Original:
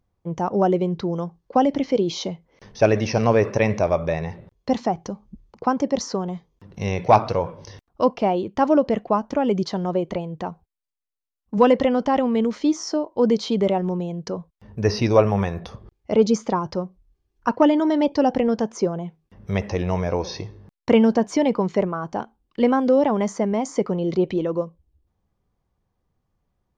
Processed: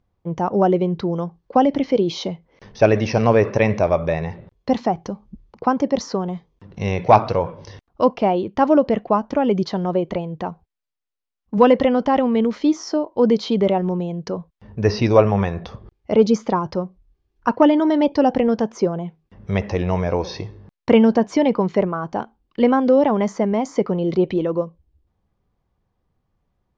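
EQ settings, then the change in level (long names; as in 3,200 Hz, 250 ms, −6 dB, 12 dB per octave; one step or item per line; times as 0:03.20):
low-pass filter 4,900 Hz 12 dB per octave
+2.5 dB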